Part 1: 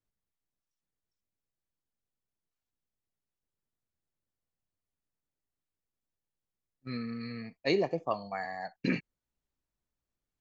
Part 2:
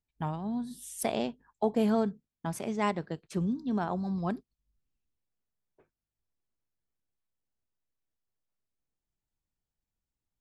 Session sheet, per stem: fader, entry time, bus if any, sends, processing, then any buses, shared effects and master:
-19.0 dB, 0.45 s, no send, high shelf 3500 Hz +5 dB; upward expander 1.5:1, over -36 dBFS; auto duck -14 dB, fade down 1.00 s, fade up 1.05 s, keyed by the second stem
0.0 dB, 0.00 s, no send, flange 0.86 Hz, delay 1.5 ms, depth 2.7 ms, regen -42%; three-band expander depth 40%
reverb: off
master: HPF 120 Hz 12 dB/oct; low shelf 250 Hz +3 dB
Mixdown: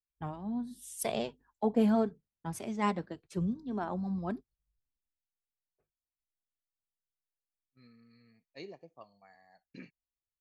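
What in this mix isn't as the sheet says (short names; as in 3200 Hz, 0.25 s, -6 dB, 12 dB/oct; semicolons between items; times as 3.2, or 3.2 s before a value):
stem 1: entry 0.45 s -> 0.90 s; master: missing HPF 120 Hz 12 dB/oct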